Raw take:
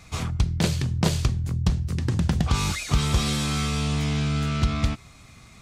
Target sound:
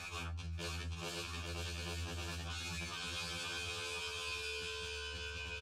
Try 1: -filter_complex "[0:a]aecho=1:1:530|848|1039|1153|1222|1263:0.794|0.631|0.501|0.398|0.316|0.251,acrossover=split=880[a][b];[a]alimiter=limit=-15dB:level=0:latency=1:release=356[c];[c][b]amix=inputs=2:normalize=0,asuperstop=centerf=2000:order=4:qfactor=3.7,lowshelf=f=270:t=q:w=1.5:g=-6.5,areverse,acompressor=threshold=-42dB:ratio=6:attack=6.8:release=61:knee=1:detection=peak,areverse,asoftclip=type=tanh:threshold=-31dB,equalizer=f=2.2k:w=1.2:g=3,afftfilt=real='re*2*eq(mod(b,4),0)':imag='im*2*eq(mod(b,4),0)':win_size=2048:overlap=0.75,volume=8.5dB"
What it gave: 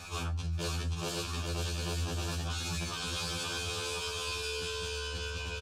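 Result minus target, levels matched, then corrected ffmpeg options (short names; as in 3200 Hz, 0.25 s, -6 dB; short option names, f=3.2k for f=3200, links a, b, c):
compressor: peak gain reduction -9.5 dB; 2000 Hz band -3.5 dB
-filter_complex "[0:a]aecho=1:1:530|848|1039|1153|1222|1263:0.794|0.631|0.501|0.398|0.316|0.251,acrossover=split=880[a][b];[a]alimiter=limit=-15dB:level=0:latency=1:release=356[c];[c][b]amix=inputs=2:normalize=0,asuperstop=centerf=2000:order=4:qfactor=3.7,lowshelf=f=270:t=q:w=1.5:g=-6.5,areverse,acompressor=threshold=-53.5dB:ratio=6:attack=6.8:release=61:knee=1:detection=peak,areverse,asoftclip=type=tanh:threshold=-31dB,equalizer=f=2.2k:w=1.2:g=10.5,afftfilt=real='re*2*eq(mod(b,4),0)':imag='im*2*eq(mod(b,4),0)':win_size=2048:overlap=0.75,volume=8.5dB"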